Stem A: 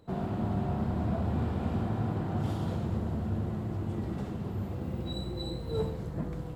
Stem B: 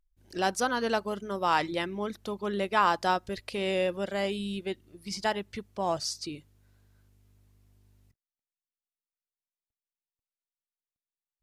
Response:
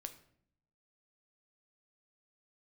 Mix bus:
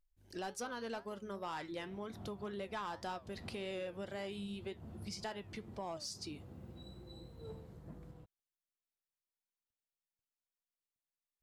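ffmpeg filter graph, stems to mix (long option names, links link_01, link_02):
-filter_complex "[0:a]adelay=1700,volume=-17dB[link_01];[1:a]flanger=delay=6.9:depth=3.7:regen=77:speed=1.9:shape=triangular,asoftclip=type=tanh:threshold=-24.5dB,volume=-1dB,asplit=2[link_02][link_03];[link_03]apad=whole_len=364254[link_04];[link_01][link_04]sidechaincompress=threshold=-41dB:ratio=8:attack=16:release=198[link_05];[link_05][link_02]amix=inputs=2:normalize=0,acompressor=threshold=-42dB:ratio=3"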